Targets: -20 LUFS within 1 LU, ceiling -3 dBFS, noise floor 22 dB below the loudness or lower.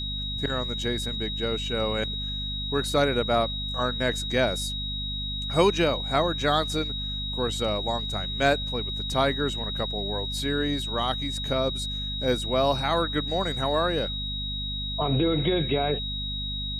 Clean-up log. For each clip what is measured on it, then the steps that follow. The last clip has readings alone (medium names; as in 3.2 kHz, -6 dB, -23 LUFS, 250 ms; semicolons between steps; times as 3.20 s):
hum 50 Hz; highest harmonic 250 Hz; hum level -32 dBFS; steady tone 3.8 kHz; tone level -31 dBFS; loudness -26.5 LUFS; peak level -8.5 dBFS; loudness target -20.0 LUFS
-> hum notches 50/100/150/200/250 Hz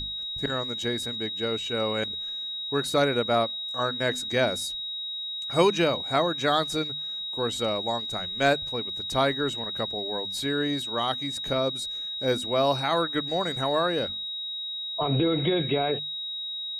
hum not found; steady tone 3.8 kHz; tone level -31 dBFS
-> band-stop 3.8 kHz, Q 30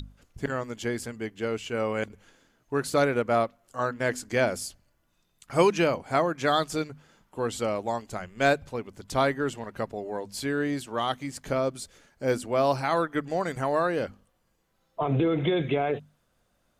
steady tone not found; loudness -28.0 LUFS; peak level -8.0 dBFS; loudness target -20.0 LUFS
-> trim +8 dB; peak limiter -3 dBFS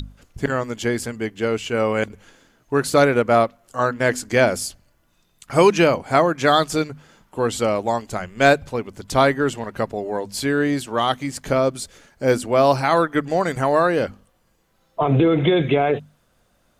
loudness -20.0 LUFS; peak level -3.0 dBFS; noise floor -63 dBFS